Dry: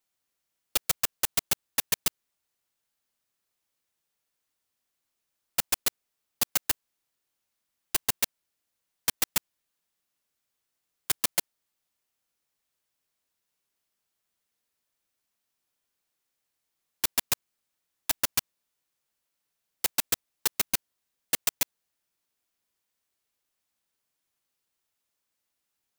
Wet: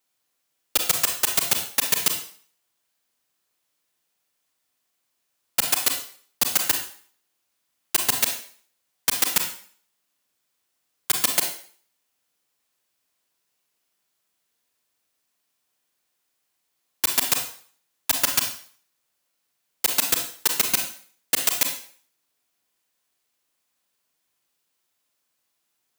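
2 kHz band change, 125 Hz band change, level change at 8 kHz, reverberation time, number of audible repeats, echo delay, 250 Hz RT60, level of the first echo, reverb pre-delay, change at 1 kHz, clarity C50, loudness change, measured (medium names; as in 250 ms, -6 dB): +6.5 dB, +3.0 dB, +6.5 dB, 0.50 s, no echo, no echo, 0.45 s, no echo, 33 ms, +6.5 dB, 6.5 dB, +6.5 dB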